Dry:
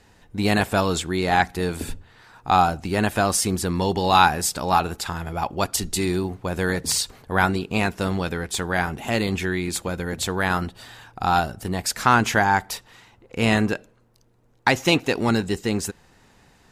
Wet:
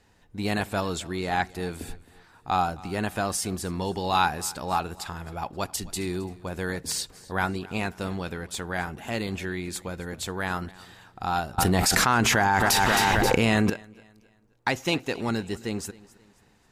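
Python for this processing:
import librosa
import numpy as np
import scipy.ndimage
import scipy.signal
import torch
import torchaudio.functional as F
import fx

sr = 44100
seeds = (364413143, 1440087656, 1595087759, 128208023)

p1 = x + fx.echo_feedback(x, sr, ms=266, feedback_pct=38, wet_db=-21.0, dry=0)
p2 = fx.env_flatten(p1, sr, amount_pct=100, at=(11.58, 13.7))
y = F.gain(torch.from_numpy(p2), -7.0).numpy()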